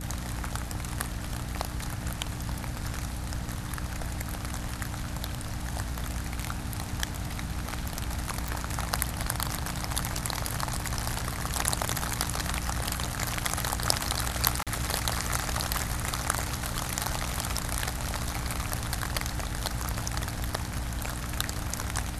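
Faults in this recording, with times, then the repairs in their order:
hum 60 Hz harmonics 5 -37 dBFS
8.48 s: pop
14.63–14.67 s: dropout 37 ms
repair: de-click; de-hum 60 Hz, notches 5; interpolate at 14.63 s, 37 ms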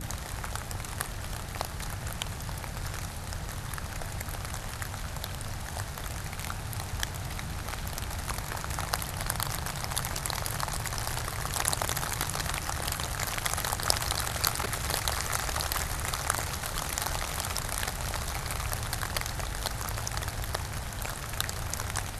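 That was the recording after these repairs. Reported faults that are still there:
8.48 s: pop

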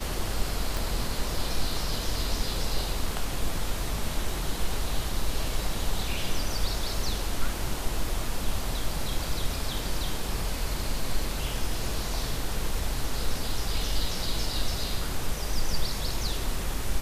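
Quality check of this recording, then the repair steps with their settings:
0.77 s: pop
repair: de-click

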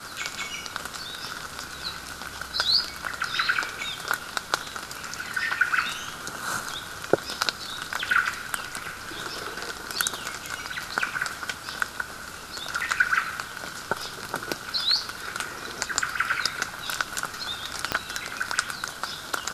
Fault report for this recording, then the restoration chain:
17.92 s: pop -8 dBFS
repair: de-click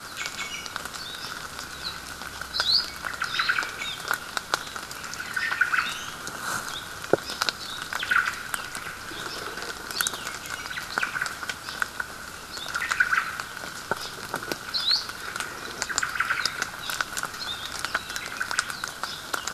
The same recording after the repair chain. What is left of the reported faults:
17.92 s: pop

